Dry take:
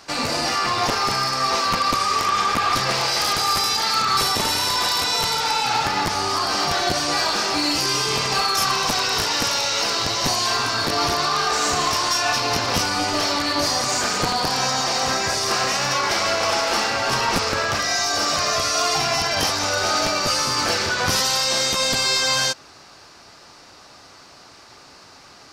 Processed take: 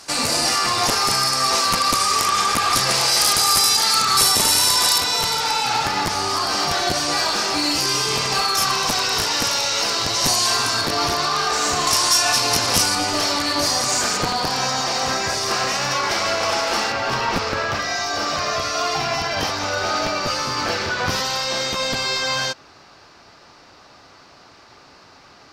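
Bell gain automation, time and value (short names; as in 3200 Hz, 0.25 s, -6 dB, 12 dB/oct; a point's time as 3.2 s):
bell 10000 Hz 1.3 oct
+13.5 dB
from 4.98 s +3.5 dB
from 10.14 s +10 dB
from 10.81 s +2 dB
from 11.87 s +13.5 dB
from 12.95 s +5.5 dB
from 14.17 s -1.5 dB
from 16.92 s -11.5 dB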